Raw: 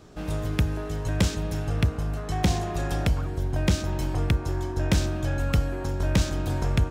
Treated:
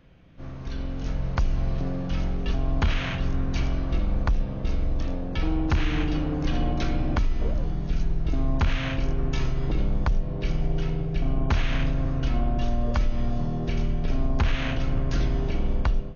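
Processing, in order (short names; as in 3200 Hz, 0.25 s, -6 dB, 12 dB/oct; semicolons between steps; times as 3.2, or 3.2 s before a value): AGC gain up to 10 dB; limiter -10.5 dBFS, peak gain reduction 6.5 dB; speed mistake 78 rpm record played at 33 rpm; gain -4.5 dB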